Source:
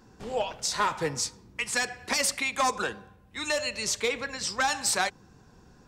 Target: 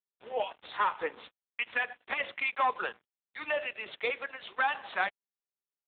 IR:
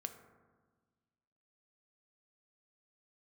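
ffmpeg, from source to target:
-af "highpass=450,aresample=16000,aeval=exprs='sgn(val(0))*max(abs(val(0))-0.00562,0)':channel_layout=same,aresample=44100" -ar 8000 -c:a libopencore_amrnb -b:a 7950

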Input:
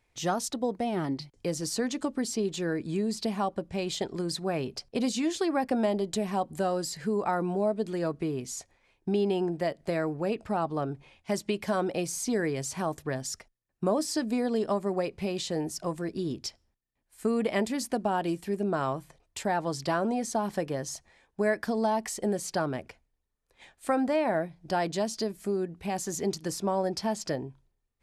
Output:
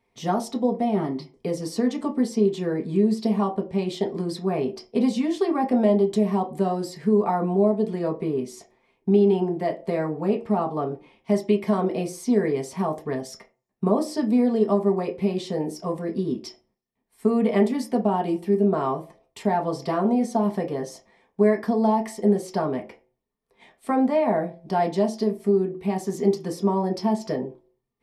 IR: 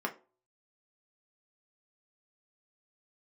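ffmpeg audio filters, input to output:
-filter_complex "[0:a]equalizer=frequency=1500:width_type=o:width=0.62:gain=-11[link_01];[1:a]atrim=start_sample=2205[link_02];[link_01][link_02]afir=irnorm=-1:irlink=0"

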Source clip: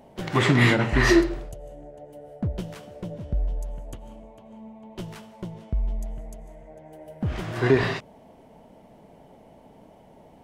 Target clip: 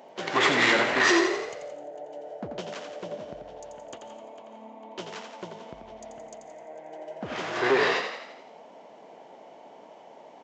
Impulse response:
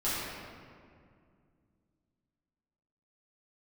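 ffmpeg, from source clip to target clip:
-filter_complex "[0:a]aresample=16000,asoftclip=type=tanh:threshold=-18dB,aresample=44100,highpass=440,asplit=8[link_01][link_02][link_03][link_04][link_05][link_06][link_07][link_08];[link_02]adelay=86,afreqshift=36,volume=-6.5dB[link_09];[link_03]adelay=172,afreqshift=72,volume=-11.9dB[link_10];[link_04]adelay=258,afreqshift=108,volume=-17.2dB[link_11];[link_05]adelay=344,afreqshift=144,volume=-22.6dB[link_12];[link_06]adelay=430,afreqshift=180,volume=-27.9dB[link_13];[link_07]adelay=516,afreqshift=216,volume=-33.3dB[link_14];[link_08]adelay=602,afreqshift=252,volume=-38.6dB[link_15];[link_01][link_09][link_10][link_11][link_12][link_13][link_14][link_15]amix=inputs=8:normalize=0,volume=4.5dB"

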